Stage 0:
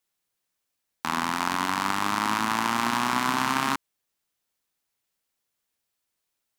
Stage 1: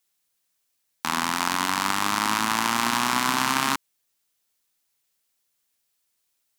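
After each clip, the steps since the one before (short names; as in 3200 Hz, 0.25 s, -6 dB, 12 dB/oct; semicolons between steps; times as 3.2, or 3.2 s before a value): high shelf 2700 Hz +7.5 dB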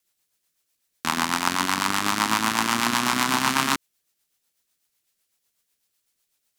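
rotary speaker horn 8 Hz; gain +4 dB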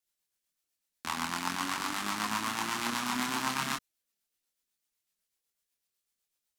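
chorus voices 6, 0.5 Hz, delay 26 ms, depth 3.2 ms; gain -7 dB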